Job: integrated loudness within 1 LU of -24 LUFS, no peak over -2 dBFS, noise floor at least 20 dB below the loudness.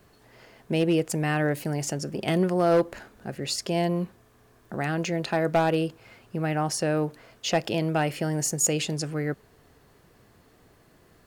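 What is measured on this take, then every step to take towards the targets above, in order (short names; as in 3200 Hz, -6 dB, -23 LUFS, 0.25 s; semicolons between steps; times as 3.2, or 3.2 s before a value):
clipped 0.3%; flat tops at -15.0 dBFS; loudness -26.5 LUFS; peak -15.0 dBFS; loudness target -24.0 LUFS
-> clip repair -15 dBFS; gain +2.5 dB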